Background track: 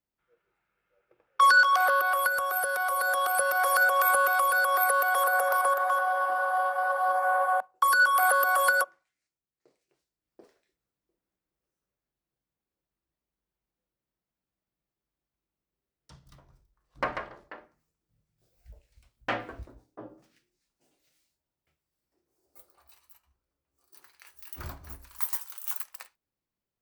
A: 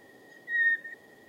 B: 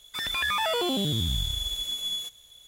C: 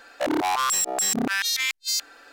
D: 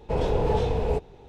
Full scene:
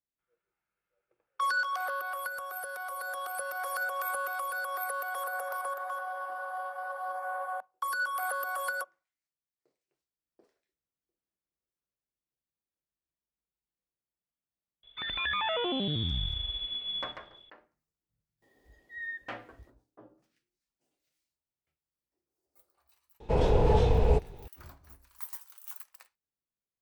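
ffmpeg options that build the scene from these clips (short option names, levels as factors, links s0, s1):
-filter_complex "[0:a]volume=0.299[s0];[2:a]aresample=8000,aresample=44100[s1];[4:a]asubboost=boost=3:cutoff=170[s2];[s1]atrim=end=2.67,asetpts=PTS-STARTPTS,volume=0.631,afade=t=in:d=0.004:c=hsin,afade=t=out:st=2.666:d=0.004:c=hsin,adelay=14830[s3];[1:a]atrim=end=1.28,asetpts=PTS-STARTPTS,volume=0.211,afade=t=in:d=0.004:c=hsin,afade=t=out:st=1.276:d=0.004:c=hsin,adelay=18420[s4];[s2]atrim=end=1.28,asetpts=PTS-STARTPTS,volume=0.944,afade=t=in:d=0.004:c=hsin,afade=t=out:st=1.276:d=0.004:c=hsin,adelay=23200[s5];[s0][s3][s4][s5]amix=inputs=4:normalize=0"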